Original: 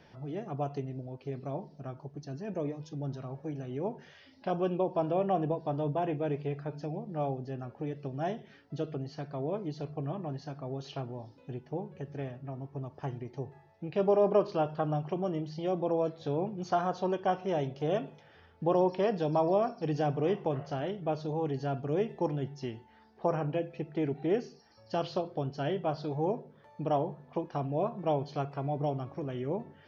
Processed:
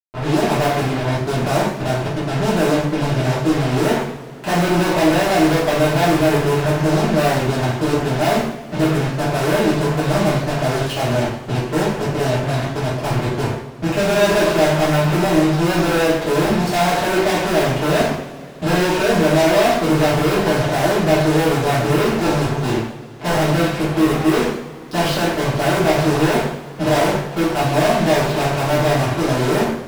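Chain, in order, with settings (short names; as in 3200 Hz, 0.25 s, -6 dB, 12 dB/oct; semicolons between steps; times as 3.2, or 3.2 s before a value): Wiener smoothing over 9 samples; fuzz box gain 51 dB, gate -48 dBFS; two-slope reverb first 0.6 s, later 3.8 s, from -22 dB, DRR -10 dB; gain -11 dB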